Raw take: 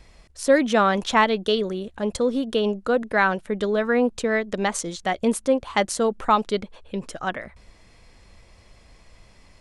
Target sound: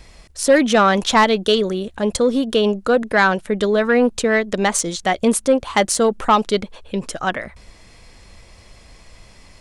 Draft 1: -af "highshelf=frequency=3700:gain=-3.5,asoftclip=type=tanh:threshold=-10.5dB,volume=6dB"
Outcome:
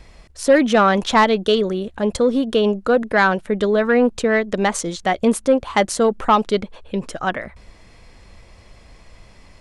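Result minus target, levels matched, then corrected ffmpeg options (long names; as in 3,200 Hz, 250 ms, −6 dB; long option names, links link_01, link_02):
8,000 Hz band −5.5 dB
-af "highshelf=frequency=3700:gain=4.5,asoftclip=type=tanh:threshold=-10.5dB,volume=6dB"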